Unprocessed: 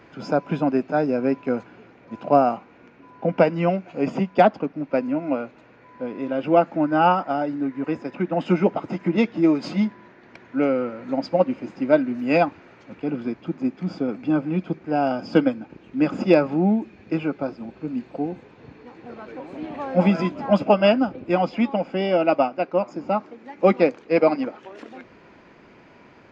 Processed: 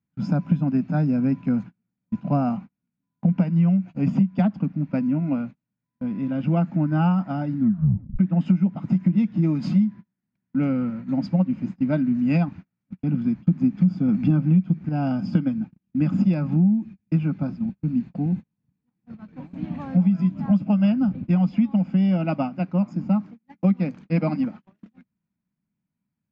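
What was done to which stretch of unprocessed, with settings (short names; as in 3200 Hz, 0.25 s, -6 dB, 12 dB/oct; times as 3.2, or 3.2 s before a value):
7.57 tape stop 0.62 s
13.47–14.89 gain +9 dB
whole clip: gate -36 dBFS, range -37 dB; resonant low shelf 280 Hz +13.5 dB, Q 3; compressor 8:1, threshold -10 dBFS; gain -6 dB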